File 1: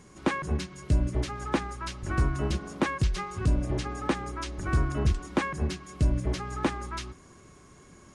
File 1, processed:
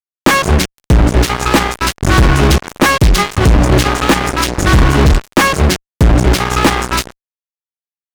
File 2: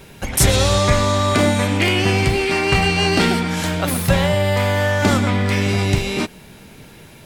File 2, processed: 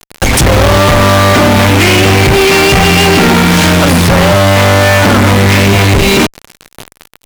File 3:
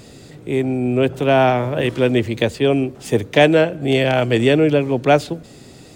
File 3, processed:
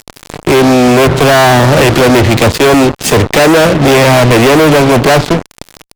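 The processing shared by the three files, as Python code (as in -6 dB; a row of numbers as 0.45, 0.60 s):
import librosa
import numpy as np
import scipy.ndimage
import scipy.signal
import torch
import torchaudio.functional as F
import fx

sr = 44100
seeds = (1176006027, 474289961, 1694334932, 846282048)

y = fx.env_lowpass_down(x, sr, base_hz=1800.0, full_db=-10.5)
y = fx.fuzz(y, sr, gain_db=35.0, gate_db=-34.0)
y = librosa.util.normalize(y) * 10.0 ** (-2 / 20.0)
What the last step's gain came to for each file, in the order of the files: +8.5, +8.0, +8.5 dB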